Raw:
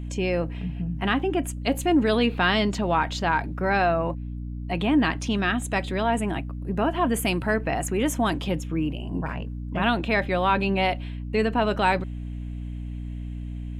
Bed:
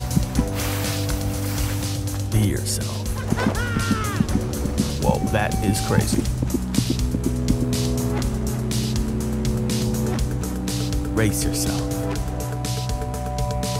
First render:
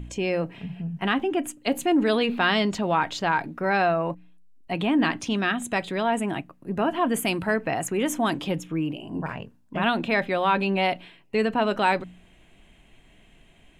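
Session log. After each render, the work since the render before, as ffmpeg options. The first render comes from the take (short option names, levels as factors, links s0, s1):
-af "bandreject=f=60:t=h:w=4,bandreject=f=120:t=h:w=4,bandreject=f=180:t=h:w=4,bandreject=f=240:t=h:w=4,bandreject=f=300:t=h:w=4"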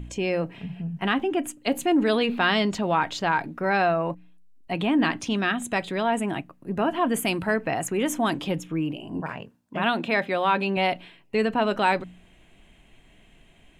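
-filter_complex "[0:a]asettb=1/sr,asplit=3[s0][s1][s2];[s0]atrim=end=9.204[s3];[s1]atrim=start=9.2:end=10.77,asetpts=PTS-STARTPTS,afade=t=in:d=0.004:c=qsin,afade=t=out:st=1.566:d=0.004:c=qsin,highpass=f=160:p=1[s4];[s2]atrim=start=10.766[s5];[s3][s4]acrossfade=d=0.004:c1=hsin:c2=qsin[s6];[s6][s5]acrossfade=d=0.004:c1=qsin:c2=hsin"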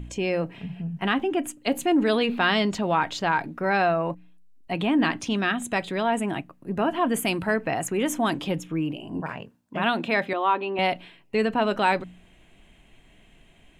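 -filter_complex "[0:a]asettb=1/sr,asplit=3[s0][s1][s2];[s0]atrim=end=10.334[s3];[s1]atrim=start=10.33:end=10.79,asetpts=PTS-STARTPTS,afade=t=in:d=0.004:c=qsin,afade=t=out:st=0.456:d=0.004:c=qsin,highpass=f=280:w=0.5412,highpass=f=280:w=1.3066,equalizer=f=330:t=q:w=4:g=5,equalizer=f=520:t=q:w=4:g=-7,equalizer=f=1100:t=q:w=4:g=4,equalizer=f=1600:t=q:w=4:g=-8,equalizer=f=2300:t=q:w=4:g=-8,lowpass=f=3100:w=0.5412,lowpass=f=3100:w=1.3066[s4];[s2]atrim=start=10.786[s5];[s3][s4]acrossfade=d=0.004:c1=hsin:c2=qsin[s6];[s6][s5]acrossfade=d=0.004:c1=qsin:c2=hsin"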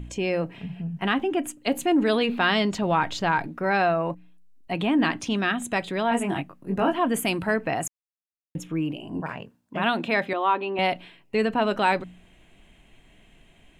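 -filter_complex "[0:a]asettb=1/sr,asplit=3[s0][s1][s2];[s0]atrim=end=2.824[s3];[s1]atrim=start=2.82:end=3.47,asetpts=PTS-STARTPTS,afade=t=in:d=0.004:c=qsin,afade=t=out:st=0.646:d=0.004:c=qsin,lowshelf=f=99:g=11[s4];[s2]atrim=start=3.466[s5];[s3][s4]acrossfade=d=0.004:c1=hsin:c2=qsin[s6];[s6][s5]acrossfade=d=0.004:c1=qsin:c2=hsin,asettb=1/sr,asplit=3[s7][s8][s9];[s7]atrim=end=6.094[s10];[s8]atrim=start=6.09:end=6.94,asetpts=PTS-STARTPTS,afade=t=in:d=0.004:c=qsin,afade=t=out:st=0.846:d=0.004:c=qsin,asplit=2[s11][s12];[s12]adelay=21,volume=0.708[s13];[s11][s13]amix=inputs=2:normalize=0,atrim=end_sample=37485[s14];[s9]atrim=start=6.936[s15];[s10][s14]acrossfade=d=0.004:c1=hsin:c2=qsin[s16];[s16][s15]acrossfade=d=0.004:c1=qsin:c2=hsin,asplit=3[s17][s18][s19];[s17]atrim=end=7.88,asetpts=PTS-STARTPTS,afade=t=out:st=7.876:d=0.004:c=hsin[s20];[s18]atrim=start=7.88:end=8.55,asetpts=PTS-STARTPTS,volume=0[s21];[s19]atrim=start=8.55,asetpts=PTS-STARTPTS,afade=t=in:d=0.004:c=hsin[s22];[s20][s21][s22]concat=n=3:v=0:a=1"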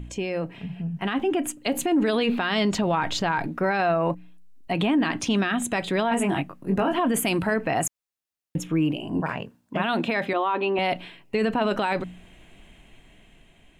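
-af "alimiter=limit=0.1:level=0:latency=1:release=39,dynaudnorm=f=330:g=7:m=1.78"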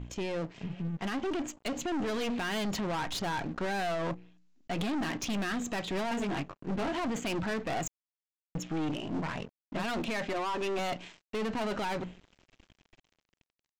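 -af "aresample=16000,aeval=exprs='sgn(val(0))*max(abs(val(0))-0.00501,0)':c=same,aresample=44100,aeval=exprs='(tanh(31.6*val(0)+0.35)-tanh(0.35))/31.6':c=same"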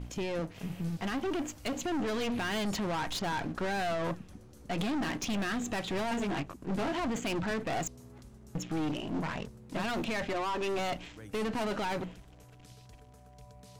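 -filter_complex "[1:a]volume=0.0355[s0];[0:a][s0]amix=inputs=2:normalize=0"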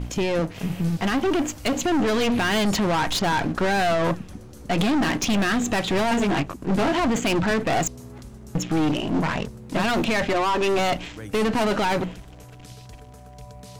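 -af "volume=3.55"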